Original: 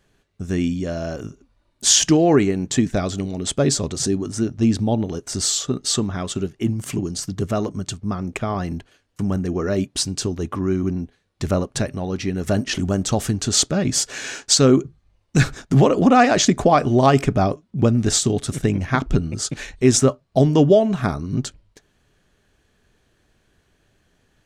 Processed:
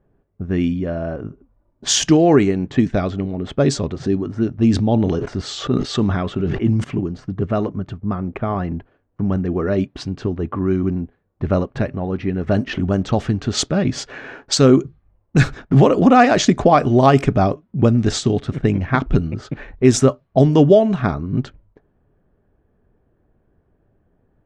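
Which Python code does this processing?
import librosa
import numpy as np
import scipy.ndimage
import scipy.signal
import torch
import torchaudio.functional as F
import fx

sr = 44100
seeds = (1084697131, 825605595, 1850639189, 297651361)

y = fx.sustainer(x, sr, db_per_s=25.0, at=(4.71, 6.84))
y = fx.env_lowpass(y, sr, base_hz=810.0, full_db=-11.5)
y = fx.high_shelf(y, sr, hz=6300.0, db=-12.0)
y = y * librosa.db_to_amplitude(2.5)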